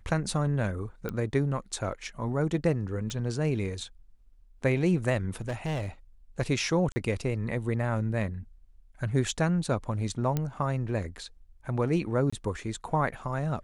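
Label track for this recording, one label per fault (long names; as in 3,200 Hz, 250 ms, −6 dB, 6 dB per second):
1.090000	1.090000	click −19 dBFS
3.100000	3.100000	click
5.410000	5.860000	clipping −27.5 dBFS
6.920000	6.960000	drop-out 40 ms
10.370000	10.370000	click −15 dBFS
12.300000	12.320000	drop-out 25 ms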